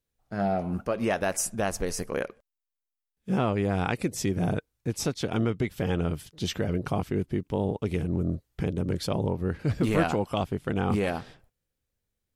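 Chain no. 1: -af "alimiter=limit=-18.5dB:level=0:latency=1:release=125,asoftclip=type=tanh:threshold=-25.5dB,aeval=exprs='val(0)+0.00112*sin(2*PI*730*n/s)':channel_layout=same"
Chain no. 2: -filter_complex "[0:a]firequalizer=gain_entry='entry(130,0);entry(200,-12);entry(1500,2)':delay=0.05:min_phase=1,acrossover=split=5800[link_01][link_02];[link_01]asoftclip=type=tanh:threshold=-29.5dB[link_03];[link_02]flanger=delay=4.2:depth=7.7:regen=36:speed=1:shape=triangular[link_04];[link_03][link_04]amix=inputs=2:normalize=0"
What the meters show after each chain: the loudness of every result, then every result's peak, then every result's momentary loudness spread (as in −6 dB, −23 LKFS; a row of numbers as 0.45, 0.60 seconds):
−34.0, −36.0 LKFS; −25.5, −18.0 dBFS; 4, 5 LU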